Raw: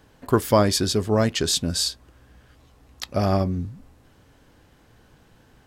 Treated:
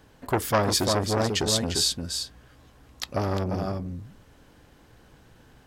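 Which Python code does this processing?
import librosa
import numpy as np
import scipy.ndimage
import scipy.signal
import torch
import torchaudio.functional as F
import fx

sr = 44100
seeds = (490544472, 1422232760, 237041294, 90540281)

p1 = x + fx.echo_single(x, sr, ms=348, db=-6.5, dry=0)
y = fx.transformer_sat(p1, sr, knee_hz=1200.0)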